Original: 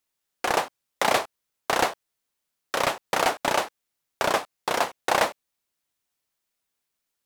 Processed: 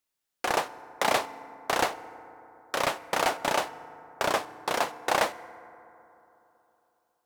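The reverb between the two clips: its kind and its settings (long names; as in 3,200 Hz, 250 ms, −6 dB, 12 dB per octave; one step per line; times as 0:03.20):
feedback delay network reverb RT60 3.3 s, high-frequency decay 0.3×, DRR 15 dB
level −3 dB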